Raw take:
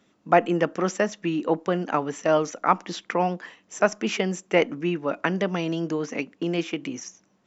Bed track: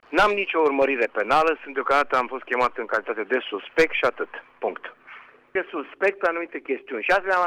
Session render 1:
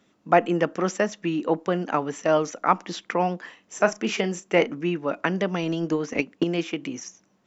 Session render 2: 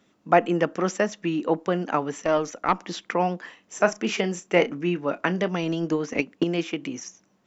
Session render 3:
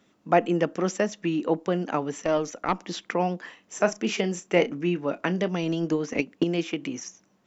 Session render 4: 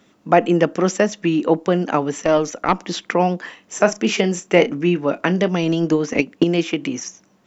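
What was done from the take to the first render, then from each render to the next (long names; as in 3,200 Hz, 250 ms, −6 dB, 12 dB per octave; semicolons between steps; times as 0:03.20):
0:03.39–0:04.69: double-tracking delay 35 ms −12.5 dB; 0:05.62–0:06.44: transient designer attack +8 dB, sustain 0 dB
0:02.22–0:02.82: tube saturation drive 9 dB, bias 0.45; 0:04.34–0:05.48: double-tracking delay 28 ms −13.5 dB
dynamic equaliser 1,300 Hz, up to −5 dB, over −35 dBFS, Q 0.78
level +8 dB; brickwall limiter −1 dBFS, peak gain reduction 2.5 dB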